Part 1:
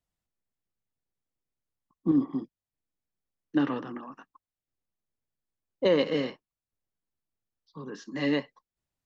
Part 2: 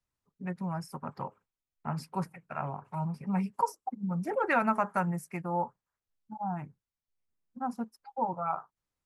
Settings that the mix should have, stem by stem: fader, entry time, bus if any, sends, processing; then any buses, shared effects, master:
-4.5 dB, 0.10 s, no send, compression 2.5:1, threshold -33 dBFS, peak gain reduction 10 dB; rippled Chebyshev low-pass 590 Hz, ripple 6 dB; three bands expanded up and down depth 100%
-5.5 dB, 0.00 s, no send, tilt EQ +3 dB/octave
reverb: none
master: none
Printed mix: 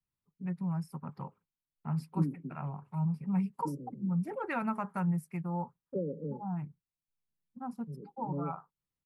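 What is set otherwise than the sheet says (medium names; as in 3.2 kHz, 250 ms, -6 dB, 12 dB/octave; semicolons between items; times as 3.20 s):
stem 2: missing tilt EQ +3 dB/octave; master: extra fifteen-band graphic EQ 160 Hz +9 dB, 630 Hz -5 dB, 1.6 kHz -4 dB, 6.3 kHz -7 dB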